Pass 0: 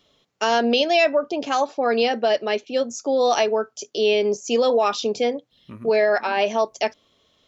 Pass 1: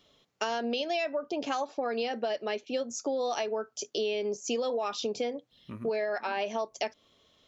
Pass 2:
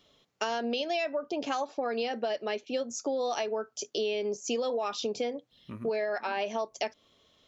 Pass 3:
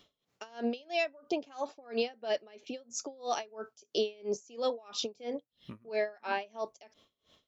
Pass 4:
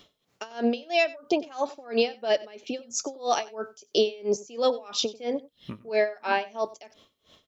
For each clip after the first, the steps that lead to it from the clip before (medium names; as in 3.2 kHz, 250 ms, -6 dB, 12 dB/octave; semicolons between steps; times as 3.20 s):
compression, threshold -26 dBFS, peak gain reduction 12 dB; trim -2.5 dB
no audible change
logarithmic tremolo 3 Hz, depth 27 dB; trim +2.5 dB
delay 93 ms -20.5 dB; trim +8 dB